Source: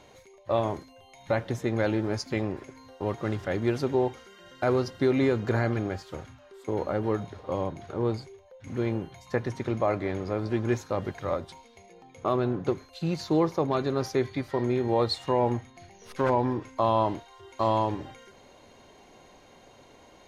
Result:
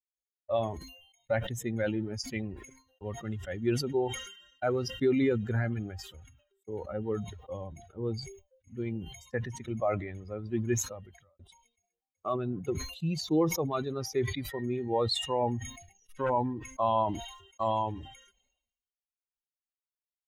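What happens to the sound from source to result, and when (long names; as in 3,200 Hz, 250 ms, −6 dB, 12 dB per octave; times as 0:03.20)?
0:10.72–0:11.39: fade out
whole clip: spectral dynamics exaggerated over time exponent 2; downward expander −57 dBFS; level that may fall only so fast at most 72 dB per second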